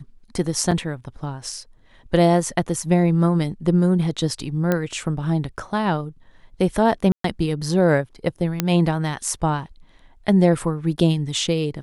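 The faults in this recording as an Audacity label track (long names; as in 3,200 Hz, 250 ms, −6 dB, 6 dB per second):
0.710000	0.720000	drop-out 6.1 ms
4.720000	4.720000	click −8 dBFS
7.120000	7.240000	drop-out 123 ms
8.600000	8.600000	click −4 dBFS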